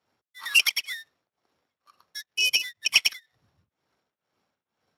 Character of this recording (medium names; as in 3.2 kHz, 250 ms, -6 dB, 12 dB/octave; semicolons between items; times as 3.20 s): a buzz of ramps at a fixed pitch in blocks of 8 samples; tremolo triangle 2.1 Hz, depth 95%; Speex